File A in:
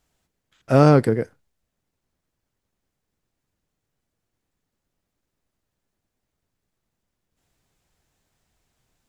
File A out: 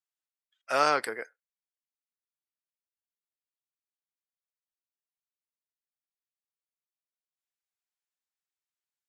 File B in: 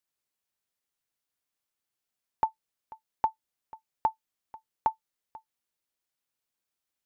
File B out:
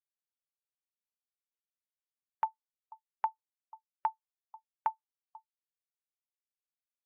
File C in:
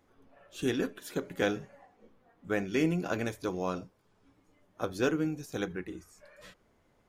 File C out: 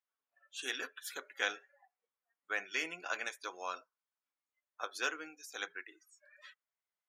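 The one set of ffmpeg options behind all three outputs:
-af "highpass=1.2k,afftdn=nr=24:nf=-54,volume=2dB"

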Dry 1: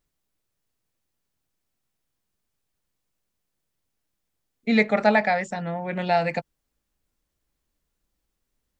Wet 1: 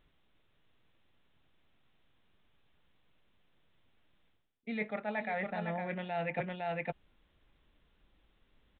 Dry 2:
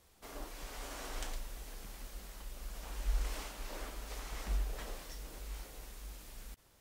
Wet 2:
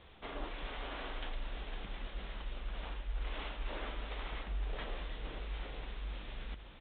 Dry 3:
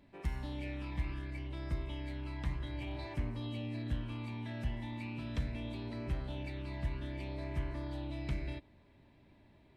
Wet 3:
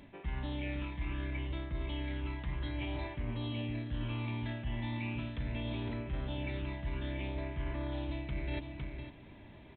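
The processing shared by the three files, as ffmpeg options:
-af "aemphasis=mode=production:type=50fm,aecho=1:1:508:0.2,areverse,acompressor=threshold=-43dB:ratio=16,areverse,aresample=8000,aresample=44100,volume=10dB"

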